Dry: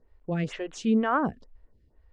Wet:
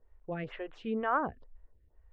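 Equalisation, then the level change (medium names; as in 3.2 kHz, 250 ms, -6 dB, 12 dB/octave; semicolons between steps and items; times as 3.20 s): distance through air 480 m; peaking EQ 200 Hz -12.5 dB 1.7 oct; 0.0 dB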